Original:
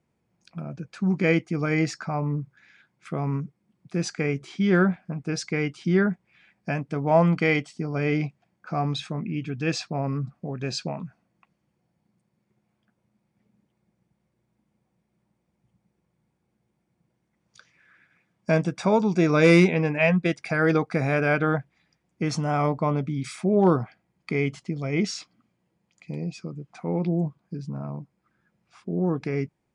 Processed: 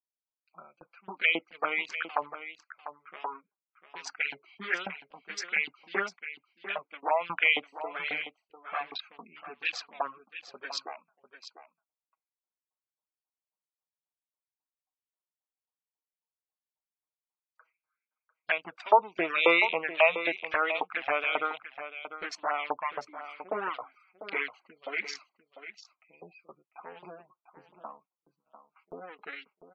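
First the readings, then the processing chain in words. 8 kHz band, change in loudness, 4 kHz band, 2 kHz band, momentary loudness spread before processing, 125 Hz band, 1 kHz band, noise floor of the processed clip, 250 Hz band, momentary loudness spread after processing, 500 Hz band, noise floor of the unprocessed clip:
-9.5 dB, -5.0 dB, 0.0 dB, 0.0 dB, 16 LU, -35.0 dB, -1.0 dB, under -85 dBFS, -21.0 dB, 23 LU, -8.5 dB, -75 dBFS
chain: local Wiener filter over 25 samples; high-pass 190 Hz 12 dB/octave; LFO high-pass saw up 3.7 Hz 900–3400 Hz; gate with hold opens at -52 dBFS; treble shelf 2.5 kHz -11.5 dB; level rider gain up to 8 dB; touch-sensitive flanger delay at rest 6.5 ms, full sweep at -21.5 dBFS; spectral gate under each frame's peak -25 dB strong; on a send: delay 697 ms -12 dB; on the sum: trim +1 dB

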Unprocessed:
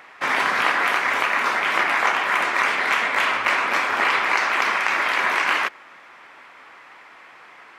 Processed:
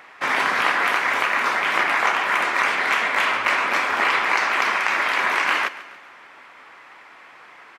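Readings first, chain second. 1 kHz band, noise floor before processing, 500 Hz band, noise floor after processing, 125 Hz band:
0.0 dB, -47 dBFS, 0.0 dB, -46 dBFS, no reading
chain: feedback delay 140 ms, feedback 50%, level -16.5 dB

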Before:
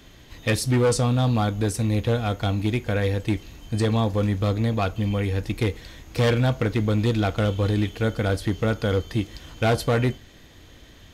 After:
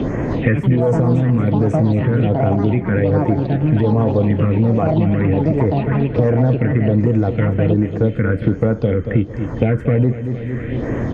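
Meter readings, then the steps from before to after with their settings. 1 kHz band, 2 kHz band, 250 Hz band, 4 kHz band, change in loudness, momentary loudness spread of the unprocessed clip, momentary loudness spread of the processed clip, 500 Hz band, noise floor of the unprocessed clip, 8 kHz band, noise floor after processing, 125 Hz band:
+4.0 dB, +2.0 dB, +9.0 dB, no reading, +7.0 dB, 7 LU, 4 LU, +7.0 dB, -49 dBFS, under -15 dB, -27 dBFS, +8.0 dB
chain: ten-band graphic EQ 125 Hz +10 dB, 250 Hz +9 dB, 500 Hz +11 dB, 1 kHz +5 dB, 2 kHz +11 dB, 4 kHz -11 dB, 8 kHz +7 dB; ever faster or slower copies 184 ms, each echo +5 st, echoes 2, each echo -6 dB; peak limiter -4.5 dBFS, peak gain reduction 9.5 dB; phase shifter stages 4, 1.3 Hz, lowest notch 690–3700 Hz; distance through air 210 m; feedback delay 229 ms, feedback 38%, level -12.5 dB; three bands compressed up and down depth 100%; trim -2.5 dB

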